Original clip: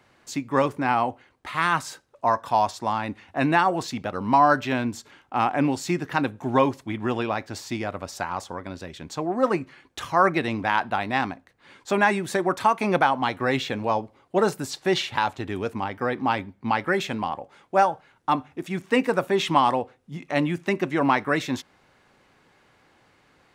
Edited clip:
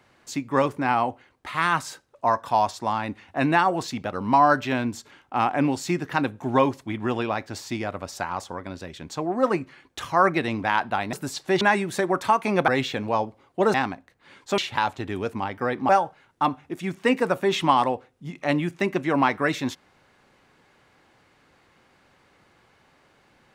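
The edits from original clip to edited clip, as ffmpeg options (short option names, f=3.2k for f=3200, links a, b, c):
-filter_complex "[0:a]asplit=7[a][b][c][d][e][f][g];[a]atrim=end=11.132[h];[b]atrim=start=14.498:end=14.982[i];[c]atrim=start=11.968:end=13.042[j];[d]atrim=start=13.438:end=14.502[k];[e]atrim=start=11.128:end=11.972[l];[f]atrim=start=14.978:end=16.292[m];[g]atrim=start=17.758[n];[h][i]acrossfade=d=0.004:c1=hsin:c2=hsin[o];[o][j]acrossfade=d=0.004:c1=hsin:c2=hsin[p];[p][k]acrossfade=d=0.004:c1=hsin:c2=hsin[q];[q][l]acrossfade=d=0.004:c1=hsin:c2=hsin[r];[r][m]acrossfade=d=0.004:c1=hsin:c2=hsin[s];[s][n]acrossfade=d=0.004:c1=hsin:c2=hsin"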